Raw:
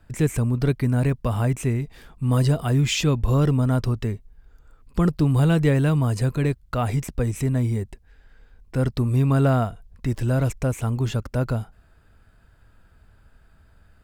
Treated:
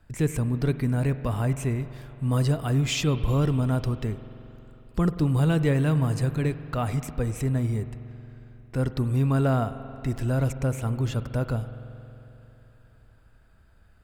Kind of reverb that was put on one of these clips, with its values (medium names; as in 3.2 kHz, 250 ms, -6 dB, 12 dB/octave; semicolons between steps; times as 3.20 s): spring tank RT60 3.4 s, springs 45 ms, chirp 60 ms, DRR 11.5 dB; trim -3.5 dB